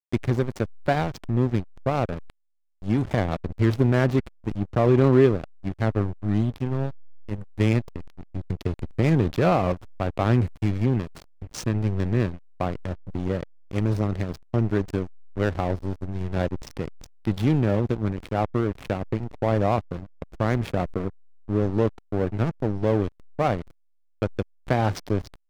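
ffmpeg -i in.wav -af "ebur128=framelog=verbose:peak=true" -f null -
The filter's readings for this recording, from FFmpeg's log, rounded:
Integrated loudness:
  I:         -25.5 LUFS
  Threshold: -35.8 LUFS
Loudness range:
  LRA:         5.3 LU
  Threshold: -45.8 LUFS
  LRA low:   -27.8 LUFS
  LRA high:  -22.5 LUFS
True peak:
  Peak:       -6.6 dBFS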